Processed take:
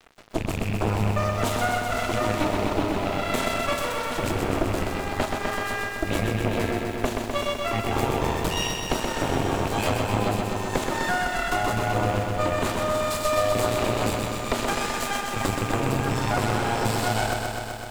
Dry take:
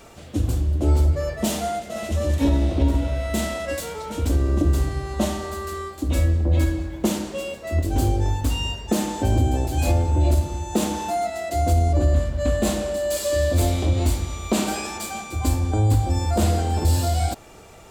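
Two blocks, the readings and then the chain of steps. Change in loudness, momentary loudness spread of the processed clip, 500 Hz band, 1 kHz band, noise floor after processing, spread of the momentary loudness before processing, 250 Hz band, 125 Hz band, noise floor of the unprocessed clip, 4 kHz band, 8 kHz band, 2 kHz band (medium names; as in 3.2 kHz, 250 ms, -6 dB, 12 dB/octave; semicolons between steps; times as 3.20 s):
-2.5 dB, 3 LU, 0.0 dB, +3.5 dB, -32 dBFS, 8 LU, -3.0 dB, -8.0 dB, -41 dBFS, +2.5 dB, -2.5 dB, +7.0 dB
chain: rattle on loud lows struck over -20 dBFS, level -29 dBFS; reverb removal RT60 0.59 s; tone controls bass -10 dB, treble -8 dB; compression, threshold -28 dBFS, peak gain reduction 9 dB; frequency shift +29 Hz; Chebyshev shaper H 6 -8 dB, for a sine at -15.5 dBFS; crossover distortion -44.5 dBFS; bit-crushed delay 127 ms, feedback 80%, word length 9-bit, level -4.5 dB; trim +3 dB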